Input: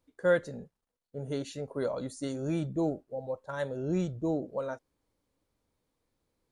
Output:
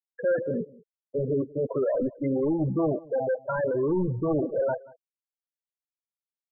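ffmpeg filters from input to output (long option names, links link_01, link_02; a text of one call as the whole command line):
ffmpeg -i in.wav -filter_complex "[0:a]agate=range=-33dB:threshold=-49dB:ratio=3:detection=peak,asplit=2[link_01][link_02];[link_02]highpass=frequency=720:poles=1,volume=35dB,asoftclip=type=tanh:threshold=-14dB[link_03];[link_01][link_03]amix=inputs=2:normalize=0,lowpass=frequency=1600:poles=1,volume=-6dB,acrusher=bits=4:mode=log:mix=0:aa=0.000001,flanger=delay=7.1:depth=1.8:regen=-78:speed=1.6:shape=sinusoidal,afftfilt=real='re*gte(hypot(re,im),0.112)':imag='im*gte(hypot(re,im),0.112)':win_size=1024:overlap=0.75,highshelf=frequency=2700:width_type=q:width=1.5:gain=7,aecho=1:1:184:0.075,volume=1.5dB" out.wav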